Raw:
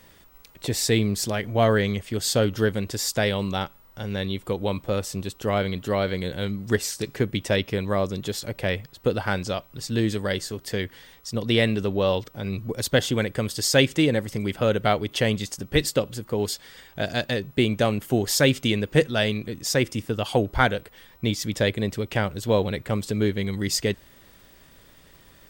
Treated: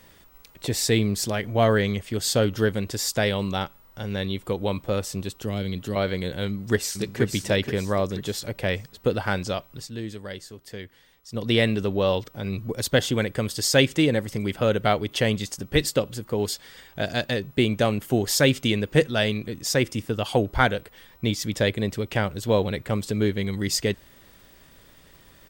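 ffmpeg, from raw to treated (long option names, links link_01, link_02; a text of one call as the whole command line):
ffmpeg -i in.wav -filter_complex "[0:a]asettb=1/sr,asplit=3[link_01][link_02][link_03];[link_01]atrim=end=5.374[link_04];[link_02]atrim=start=5.37:end=5.96,asetpts=PTS-STARTPTS,afade=type=in:duration=0.004:curve=qsin,afade=type=out:start_time=0.586:duration=0.004:curve=qsin,acrossover=split=370|3000[link_05][link_06][link_07];[link_06]acompressor=threshold=-43dB:ratio=2.5:attack=3.2:release=140:knee=2.83:detection=peak[link_08];[link_05][link_08][link_07]amix=inputs=3:normalize=0[link_09];[link_03]atrim=start=5.956[link_10];[link_04][link_09]acrossfade=duration=0.004:curve1=hsin:curve2=qsin[link_11];[link_11][link_10]acrossfade=duration=0.004:curve1=qsin:curve2=hsin,asplit=2[link_12][link_13];[link_13]afade=type=in:start_time=6.47:duration=0.01,afade=type=out:start_time=7.21:duration=0.01,aecho=0:1:480|960|1440|1920|2400:0.501187|0.200475|0.08019|0.032076|0.0128304[link_14];[link_12][link_14]amix=inputs=2:normalize=0,asplit=3[link_15][link_16][link_17];[link_15]atrim=end=9.9,asetpts=PTS-STARTPTS,afade=type=out:start_time=9.68:duration=0.22:curve=qsin:silence=0.316228[link_18];[link_16]atrim=start=9.9:end=11.28,asetpts=PTS-STARTPTS,volume=-10dB[link_19];[link_17]atrim=start=11.28,asetpts=PTS-STARTPTS,afade=type=in:duration=0.22:curve=qsin:silence=0.316228[link_20];[link_18][link_19][link_20]concat=n=3:v=0:a=1" out.wav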